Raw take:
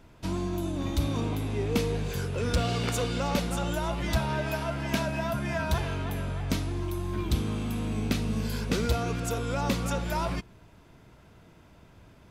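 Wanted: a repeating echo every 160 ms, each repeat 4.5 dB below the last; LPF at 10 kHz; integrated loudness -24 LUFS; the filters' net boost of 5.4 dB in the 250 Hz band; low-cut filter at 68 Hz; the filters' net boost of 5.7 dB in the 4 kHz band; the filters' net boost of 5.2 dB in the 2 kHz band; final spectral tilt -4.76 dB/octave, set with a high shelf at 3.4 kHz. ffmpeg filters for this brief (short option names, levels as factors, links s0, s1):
-af "highpass=68,lowpass=10000,equalizer=f=250:t=o:g=7,equalizer=f=2000:t=o:g=6,highshelf=f=3400:g=-3.5,equalizer=f=4000:t=o:g=7.5,aecho=1:1:160|320|480|640|800|960|1120|1280|1440:0.596|0.357|0.214|0.129|0.0772|0.0463|0.0278|0.0167|0.01,volume=1.12"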